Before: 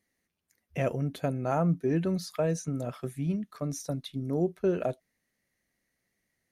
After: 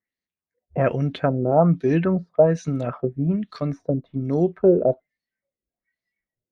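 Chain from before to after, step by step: spectral noise reduction 21 dB; LFO low-pass sine 1.2 Hz 420–4500 Hz; gain +7.5 dB

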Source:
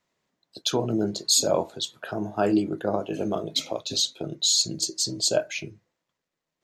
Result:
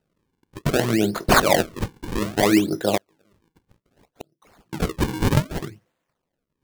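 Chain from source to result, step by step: 2.97–4.73 flipped gate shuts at -27 dBFS, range -39 dB; decimation with a swept rate 39×, swing 160% 0.63 Hz; gain +5 dB

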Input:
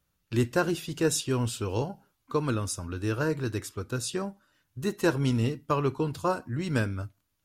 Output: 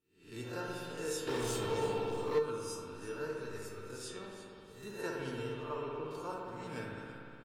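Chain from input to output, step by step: spectral swells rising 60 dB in 0.47 s; 5.62–6.11 tone controls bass -2 dB, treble -15 dB; on a send: frequency-shifting echo 0.336 s, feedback 34%, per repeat -110 Hz, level -14 dB; on the sum: spring tank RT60 2.7 s, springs 59 ms, chirp 30 ms, DRR -2 dB; 1.27–2.39 sample leveller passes 3; low shelf 140 Hz -8 dB; resonator 450 Hz, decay 0.4 s, mix 90%

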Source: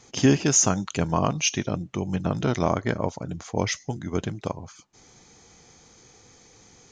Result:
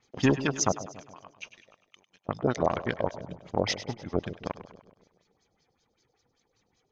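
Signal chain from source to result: reverb removal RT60 1 s; 0.72–2.29 differentiator; in parallel at +3 dB: limiter -14.5 dBFS, peak gain reduction 7 dB; on the sum: power-law curve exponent 1.4; LFO low-pass sine 5.2 Hz 540–5200 Hz; on a send: split-band echo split 580 Hz, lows 0.14 s, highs 0.1 s, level -13 dB; on the sum: gain -7.5 dB

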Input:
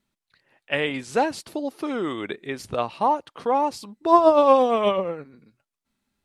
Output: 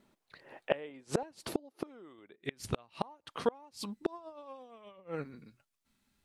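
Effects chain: bell 500 Hz +12 dB 2.8 oct, from 1.23 s +4.5 dB, from 2.41 s -4 dB; flipped gate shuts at -19 dBFS, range -32 dB; gain +2.5 dB

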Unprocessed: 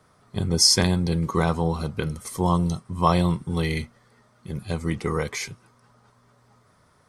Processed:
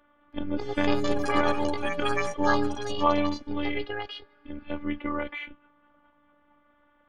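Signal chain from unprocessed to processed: elliptic low-pass 3200 Hz, stop band 40 dB; robotiser 292 Hz; echoes that change speed 0.327 s, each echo +6 st, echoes 3

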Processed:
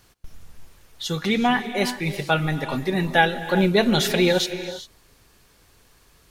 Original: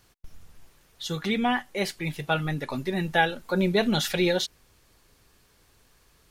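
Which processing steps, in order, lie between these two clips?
non-linear reverb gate 0.42 s rising, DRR 10.5 dB; gain +4.5 dB

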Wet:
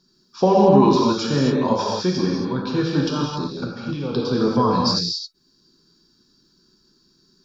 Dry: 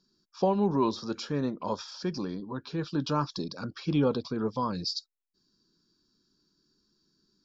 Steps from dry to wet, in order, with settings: 3.01–4.12 level quantiser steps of 18 dB; non-linear reverb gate 0.29 s flat, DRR -2.5 dB; gain +8 dB

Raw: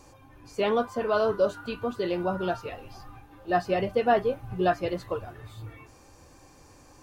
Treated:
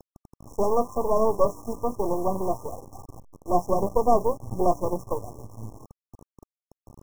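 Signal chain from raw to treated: level-crossing sampler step -43 dBFS; half-wave rectifier; brick-wall FIR band-stop 1200–5300 Hz; gain +7 dB

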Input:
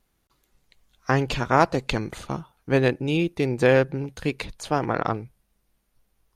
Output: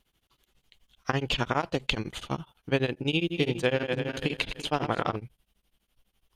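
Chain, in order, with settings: 3.12–5.16 regenerating reverse delay 0.168 s, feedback 49%, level -8 dB; bell 3100 Hz +12 dB 0.52 oct; compressor 6:1, threshold -19 dBFS, peak gain reduction 8.5 dB; beating tremolo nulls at 12 Hz

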